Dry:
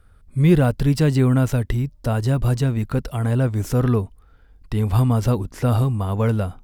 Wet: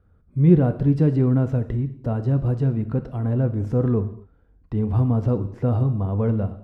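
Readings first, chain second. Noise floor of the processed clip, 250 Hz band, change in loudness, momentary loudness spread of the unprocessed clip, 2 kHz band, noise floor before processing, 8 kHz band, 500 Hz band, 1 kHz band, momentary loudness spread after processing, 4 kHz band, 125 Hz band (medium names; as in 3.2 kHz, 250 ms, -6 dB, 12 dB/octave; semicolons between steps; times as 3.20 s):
-58 dBFS, -0.5 dB, -1.5 dB, 7 LU, under -10 dB, -52 dBFS, under -25 dB, -1.5 dB, -6.5 dB, 9 LU, under -15 dB, -1.5 dB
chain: band-pass filter 220 Hz, Q 0.52; gated-style reverb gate 260 ms falling, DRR 9 dB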